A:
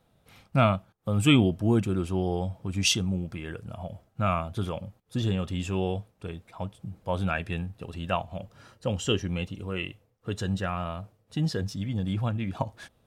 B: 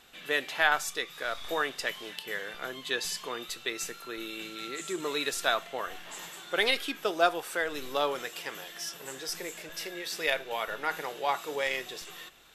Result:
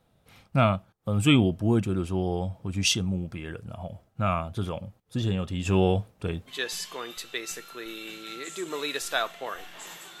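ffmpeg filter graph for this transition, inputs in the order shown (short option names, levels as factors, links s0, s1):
-filter_complex "[0:a]asplit=3[s0][s1][s2];[s0]afade=t=out:st=5.65:d=0.02[s3];[s1]acontrast=65,afade=t=in:st=5.65:d=0.02,afade=t=out:st=6.52:d=0.02[s4];[s2]afade=t=in:st=6.52:d=0.02[s5];[s3][s4][s5]amix=inputs=3:normalize=0,apad=whole_dur=10.2,atrim=end=10.2,atrim=end=6.52,asetpts=PTS-STARTPTS[s6];[1:a]atrim=start=2.78:end=6.52,asetpts=PTS-STARTPTS[s7];[s6][s7]acrossfade=d=0.06:c1=tri:c2=tri"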